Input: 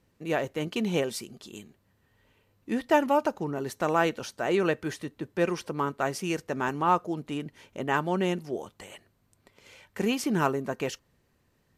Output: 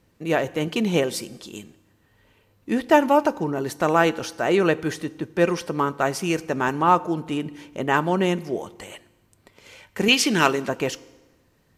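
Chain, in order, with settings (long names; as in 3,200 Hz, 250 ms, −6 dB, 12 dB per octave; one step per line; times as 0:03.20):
0:10.08–0:10.69: meter weighting curve D
convolution reverb RT60 1.2 s, pre-delay 3 ms, DRR 17 dB
level +6 dB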